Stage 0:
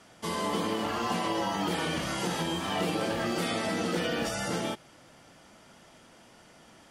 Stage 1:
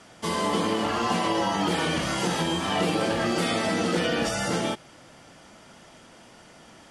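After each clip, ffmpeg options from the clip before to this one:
-af "lowpass=f=11k:w=0.5412,lowpass=f=11k:w=1.3066,volume=5dB"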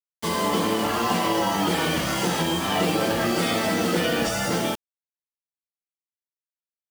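-af "acrusher=bits=5:mix=0:aa=0.000001,volume=2dB"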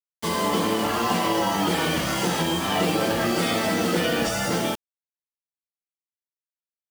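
-af anull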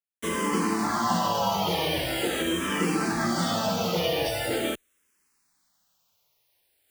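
-filter_complex "[0:a]areverse,acompressor=mode=upward:threshold=-43dB:ratio=2.5,areverse,asplit=2[a][b];[b]afreqshift=-0.43[c];[a][c]amix=inputs=2:normalize=1"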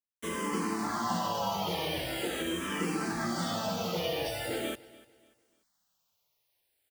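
-af "aecho=1:1:293|586|879:0.0944|0.0312|0.0103,volume=-6.5dB"

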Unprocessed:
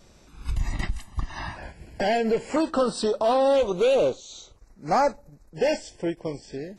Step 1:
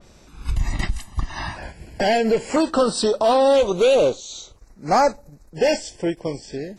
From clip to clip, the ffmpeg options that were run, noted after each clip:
-af "adynamicequalizer=threshold=0.00708:dfrequency=3300:dqfactor=0.7:tfrequency=3300:tqfactor=0.7:attack=5:release=100:ratio=0.375:range=2:mode=boostabove:tftype=highshelf,volume=4.5dB"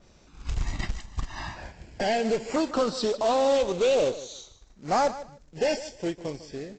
-af "aresample=16000,acrusher=bits=4:mode=log:mix=0:aa=0.000001,aresample=44100,aecho=1:1:151|302:0.178|0.0338,volume=-7dB"

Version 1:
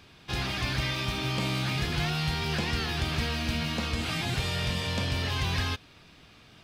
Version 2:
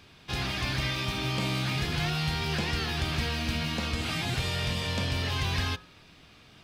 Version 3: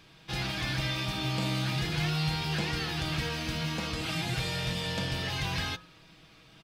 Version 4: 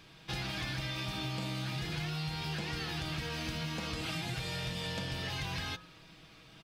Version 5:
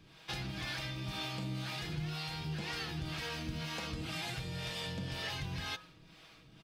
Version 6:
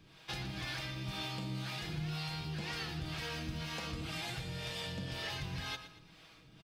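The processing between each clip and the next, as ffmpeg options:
-af "bandreject=f=57.4:t=h:w=4,bandreject=f=114.8:t=h:w=4,bandreject=f=172.2:t=h:w=4,bandreject=f=229.6:t=h:w=4,bandreject=f=287:t=h:w=4,bandreject=f=344.4:t=h:w=4,bandreject=f=401.8:t=h:w=4,bandreject=f=459.2:t=h:w=4,bandreject=f=516.6:t=h:w=4,bandreject=f=574:t=h:w=4,bandreject=f=631.4:t=h:w=4,bandreject=f=688.8:t=h:w=4,bandreject=f=746.2:t=h:w=4,bandreject=f=803.6:t=h:w=4,bandreject=f=861:t=h:w=4,bandreject=f=918.4:t=h:w=4,bandreject=f=975.8:t=h:w=4,bandreject=f=1.0332k:t=h:w=4,bandreject=f=1.0906k:t=h:w=4,bandreject=f=1.148k:t=h:w=4,bandreject=f=1.2054k:t=h:w=4,bandreject=f=1.2628k:t=h:w=4,bandreject=f=1.3202k:t=h:w=4,bandreject=f=1.3776k:t=h:w=4,bandreject=f=1.435k:t=h:w=4,bandreject=f=1.4924k:t=h:w=4,bandreject=f=1.5498k:t=h:w=4,bandreject=f=1.6072k:t=h:w=4,bandreject=f=1.6646k:t=h:w=4,bandreject=f=1.722k:t=h:w=4,bandreject=f=1.7794k:t=h:w=4"
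-af "aecho=1:1:6.2:0.55,volume=-2.5dB"
-af "acompressor=threshold=-34dB:ratio=6"
-filter_complex "[0:a]acrossover=split=400[a][b];[a]aeval=exprs='val(0)*(1-0.7/2+0.7/2*cos(2*PI*2*n/s))':c=same[c];[b]aeval=exprs='val(0)*(1-0.7/2-0.7/2*cos(2*PI*2*n/s))':c=same[d];[c][d]amix=inputs=2:normalize=0,volume=1dB"
-af "aecho=1:1:117|234|351|468:0.224|0.0918|0.0376|0.0154,volume=-1dB"

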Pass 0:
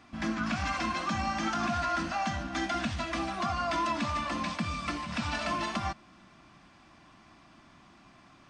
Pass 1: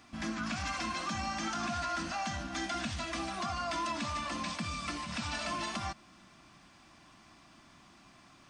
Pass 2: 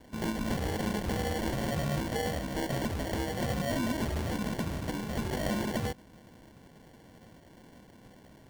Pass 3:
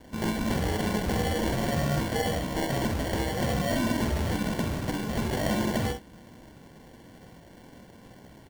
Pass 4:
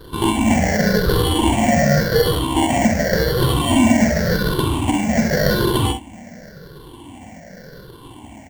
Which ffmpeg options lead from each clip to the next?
-filter_complex "[0:a]highshelf=f=4.8k:g=11,asplit=2[a][b];[b]alimiter=level_in=4dB:limit=-24dB:level=0:latency=1:release=78,volume=-4dB,volume=0.5dB[c];[a][c]amix=inputs=2:normalize=0,volume=-9dB"
-af "acrusher=samples=35:mix=1:aa=0.000001,volume=4.5dB"
-af "aecho=1:1:47|64:0.422|0.282,volume=3.5dB"
-af "afftfilt=real='re*pow(10,19/40*sin(2*PI*(0.61*log(max(b,1)*sr/1024/100)/log(2)-(-0.89)*(pts-256)/sr)))':imag='im*pow(10,19/40*sin(2*PI*(0.61*log(max(b,1)*sr/1024/100)/log(2)-(-0.89)*(pts-256)/sr)))':win_size=1024:overlap=0.75,volume=7.5dB"

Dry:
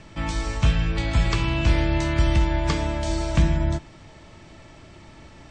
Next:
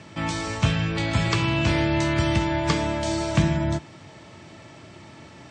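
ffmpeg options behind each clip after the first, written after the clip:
-af "highpass=f=92:w=0.5412,highpass=f=92:w=1.3066,volume=2.5dB"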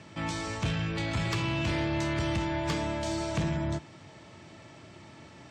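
-af "asoftclip=type=tanh:threshold=-18.5dB,volume=-5dB"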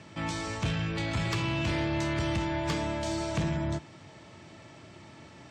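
-af anull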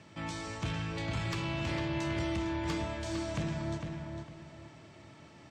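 -filter_complex "[0:a]asplit=2[a][b];[b]adelay=454,lowpass=f=3.5k:p=1,volume=-5dB,asplit=2[c][d];[d]adelay=454,lowpass=f=3.5k:p=1,volume=0.3,asplit=2[e][f];[f]adelay=454,lowpass=f=3.5k:p=1,volume=0.3,asplit=2[g][h];[h]adelay=454,lowpass=f=3.5k:p=1,volume=0.3[i];[a][c][e][g][i]amix=inputs=5:normalize=0,volume=-5.5dB"

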